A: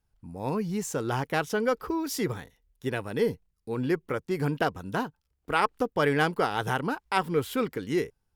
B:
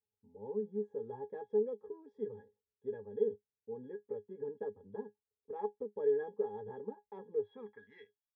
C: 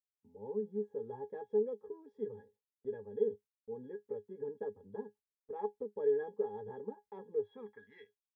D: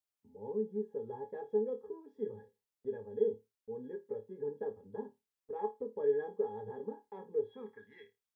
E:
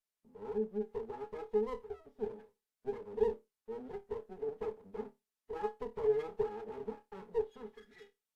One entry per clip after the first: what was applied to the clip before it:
resonances in every octave G#, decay 0.12 s; band-pass filter sweep 460 Hz → 3,900 Hz, 0:07.34–0:08.26; level +2.5 dB
noise gate with hold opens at −58 dBFS
flutter between parallel walls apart 4.7 metres, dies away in 0.21 s; level +1 dB
lower of the sound and its delayed copy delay 4.6 ms; AAC 64 kbit/s 32,000 Hz

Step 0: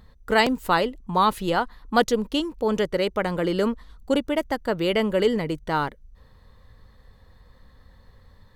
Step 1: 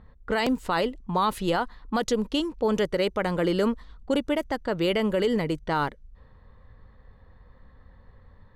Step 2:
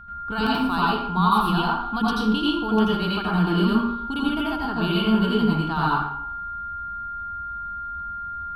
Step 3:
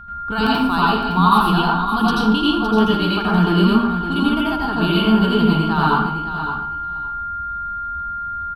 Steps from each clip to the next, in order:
brickwall limiter −15 dBFS, peak gain reduction 9.5 dB; low-pass that shuts in the quiet parts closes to 1,900 Hz, open at −21.5 dBFS
phaser with its sweep stopped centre 2,000 Hz, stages 6; steady tone 1,400 Hz −41 dBFS; convolution reverb RT60 0.80 s, pre-delay 79 ms, DRR −5.5 dB
repeating echo 562 ms, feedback 16%, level −9.5 dB; level +5 dB

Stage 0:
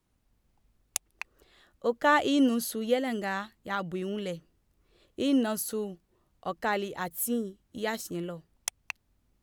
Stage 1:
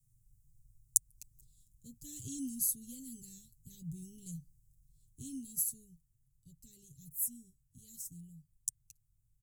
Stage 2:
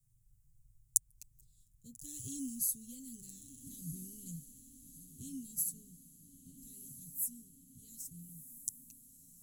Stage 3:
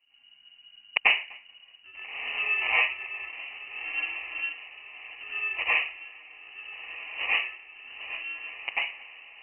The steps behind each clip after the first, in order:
elliptic band-stop filter 130–7,400 Hz, stop band 80 dB; comb filter 7.4 ms, depth 71%; speech leveller within 5 dB 2 s
feedback delay with all-pass diffusion 1,342 ms, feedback 53%, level −12 dB; level −1.5 dB
decimation without filtering 32×; convolution reverb RT60 0.40 s, pre-delay 86 ms, DRR −9 dB; voice inversion scrambler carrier 2,900 Hz; level +2.5 dB

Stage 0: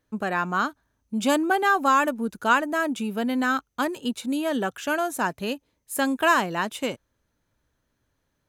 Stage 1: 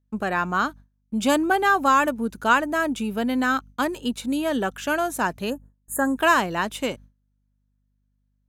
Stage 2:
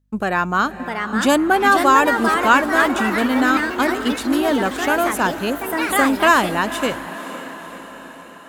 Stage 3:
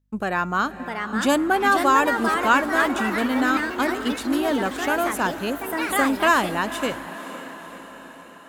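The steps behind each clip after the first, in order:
mains hum 50 Hz, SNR 25 dB; noise gate with hold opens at −42 dBFS; gain on a spectral selection 0:05.50–0:06.17, 1,900–6,500 Hz −24 dB; level +1.5 dB
feedback delay with all-pass diffusion 517 ms, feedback 60%, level −13 dB; delay with pitch and tempo change per echo 690 ms, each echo +3 semitones, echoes 3, each echo −6 dB; level +4.5 dB
tuned comb filter 280 Hz, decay 1.1 s, mix 40%

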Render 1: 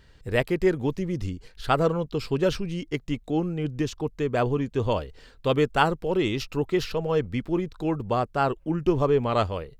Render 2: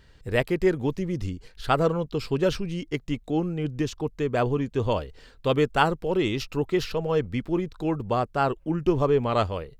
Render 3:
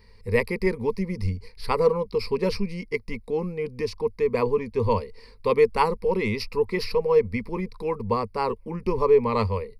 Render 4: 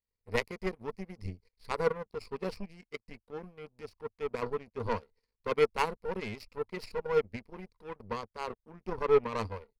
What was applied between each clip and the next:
no processing that can be heard
EQ curve with evenly spaced ripples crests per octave 0.89, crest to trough 18 dB; level −2.5 dB
power curve on the samples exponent 2; transient designer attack −5 dB, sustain 0 dB

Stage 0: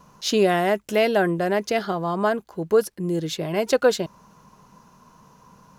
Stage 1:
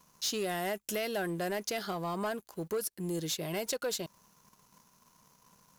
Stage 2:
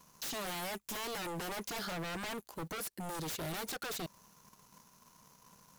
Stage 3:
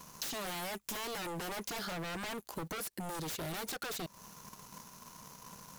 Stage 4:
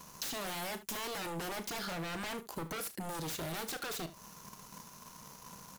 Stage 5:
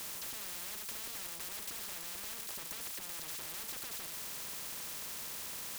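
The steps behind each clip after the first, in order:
first-order pre-emphasis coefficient 0.8; downward compressor 4 to 1, threshold −34 dBFS, peak gain reduction 8 dB; leveller curve on the samples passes 2; level −2.5 dB
wave folding −36.5 dBFS; level +2 dB
downward compressor 10 to 1, threshold −47 dBFS, peak gain reduction 10 dB; level +9.5 dB
ambience of single reflections 36 ms −12 dB, 75 ms −15.5 dB
spike at every zero crossing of −33 dBFS; notch comb filter 740 Hz; every bin compressed towards the loudest bin 10 to 1; level −3 dB

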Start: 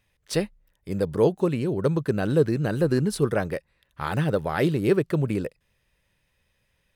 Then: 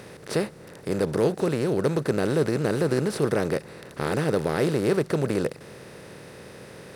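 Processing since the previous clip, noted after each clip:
compressor on every frequency bin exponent 0.4
high-pass filter 57 Hz
level −6 dB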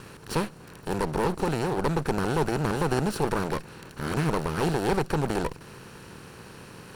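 lower of the sound and its delayed copy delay 0.71 ms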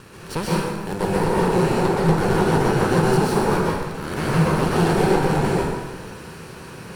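dense smooth reverb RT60 1.4 s, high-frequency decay 0.75×, pre-delay 110 ms, DRR −6.5 dB

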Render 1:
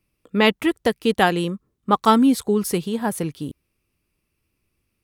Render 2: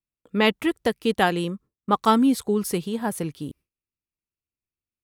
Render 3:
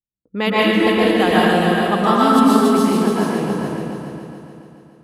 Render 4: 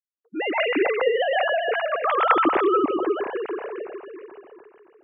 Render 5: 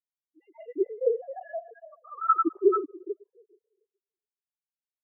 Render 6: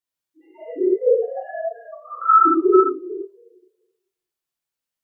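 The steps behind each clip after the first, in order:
noise gate with hold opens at −43 dBFS; level −3 dB
low-pass that shuts in the quiet parts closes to 370 Hz, open at −19 dBFS; echo machine with several playback heads 142 ms, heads second and third, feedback 44%, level −7 dB; dense smooth reverb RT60 1.9 s, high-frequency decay 0.65×, pre-delay 105 ms, DRR −7.5 dB; level −1.5 dB
three sine waves on the formant tracks; level −7 dB
every bin expanded away from the loudest bin 4 to 1; level −2.5 dB
notch filter 410 Hz, Q 12; reverb whose tail is shaped and stops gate 150 ms flat, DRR −5 dB; level +3.5 dB

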